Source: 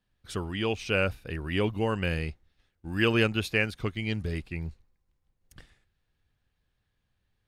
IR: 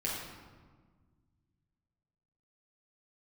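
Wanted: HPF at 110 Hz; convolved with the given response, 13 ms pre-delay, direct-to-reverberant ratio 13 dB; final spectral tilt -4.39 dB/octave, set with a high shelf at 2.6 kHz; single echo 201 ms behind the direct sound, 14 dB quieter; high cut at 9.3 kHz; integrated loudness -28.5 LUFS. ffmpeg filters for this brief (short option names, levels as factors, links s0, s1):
-filter_complex "[0:a]highpass=110,lowpass=9300,highshelf=f=2600:g=-4,aecho=1:1:201:0.2,asplit=2[s0][s1];[1:a]atrim=start_sample=2205,adelay=13[s2];[s1][s2]afir=irnorm=-1:irlink=0,volume=0.133[s3];[s0][s3]amix=inputs=2:normalize=0,volume=1.19"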